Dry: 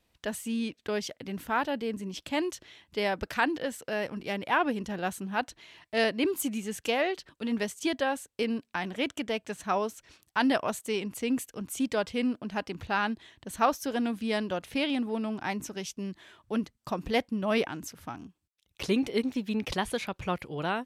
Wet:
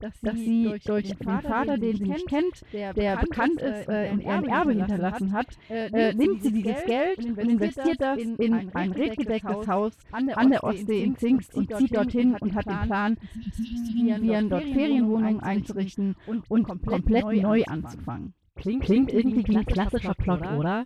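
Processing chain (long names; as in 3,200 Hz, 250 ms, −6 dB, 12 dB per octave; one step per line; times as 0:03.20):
RIAA equalisation playback
healed spectral selection 0:13.39–0:14.14, 250–2,700 Hz
parametric band 6,000 Hz −3.5 dB 0.56 octaves
in parallel at −12 dB: hard clipping −25.5 dBFS, distortion −8 dB
on the sum: all-pass dispersion highs, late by 41 ms, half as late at 2,500 Hz
on a send: backwards echo 233 ms −7.5 dB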